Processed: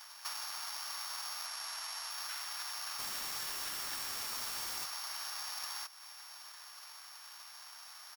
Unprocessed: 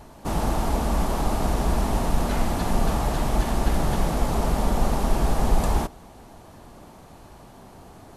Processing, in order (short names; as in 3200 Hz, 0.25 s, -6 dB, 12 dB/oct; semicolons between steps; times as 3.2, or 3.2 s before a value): sample sorter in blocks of 8 samples; HPF 1300 Hz 24 dB/oct; compressor 6:1, threshold -42 dBFS, peak gain reduction 12 dB; 1.46–2.11 brick-wall FIR low-pass 12000 Hz; 2.99–4.85 requantised 8-bit, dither triangular; echo 0.646 s -22.5 dB; gain +3.5 dB